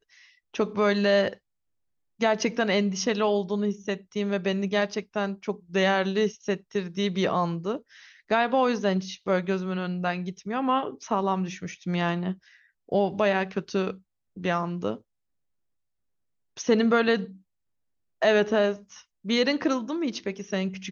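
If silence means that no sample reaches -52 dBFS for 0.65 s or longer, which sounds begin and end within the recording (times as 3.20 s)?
2.19–15.01 s
16.57–17.39 s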